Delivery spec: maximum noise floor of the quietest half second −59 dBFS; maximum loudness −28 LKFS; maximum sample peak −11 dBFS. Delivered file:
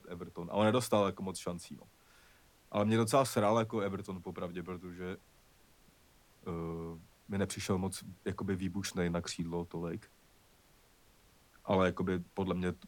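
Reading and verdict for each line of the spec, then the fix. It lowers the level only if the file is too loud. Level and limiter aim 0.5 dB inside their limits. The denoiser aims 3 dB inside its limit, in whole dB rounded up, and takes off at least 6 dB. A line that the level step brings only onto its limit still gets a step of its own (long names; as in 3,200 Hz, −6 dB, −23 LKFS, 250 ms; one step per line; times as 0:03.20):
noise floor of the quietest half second −65 dBFS: in spec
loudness −35.0 LKFS: in spec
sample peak −15.5 dBFS: in spec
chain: no processing needed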